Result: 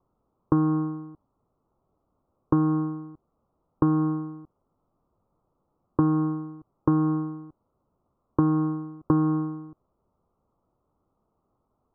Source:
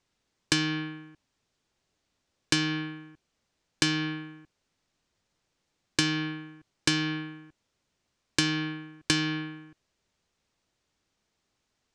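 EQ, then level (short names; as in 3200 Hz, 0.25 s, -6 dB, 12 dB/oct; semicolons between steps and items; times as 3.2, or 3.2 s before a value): steep low-pass 1300 Hz 96 dB/oct; +8.0 dB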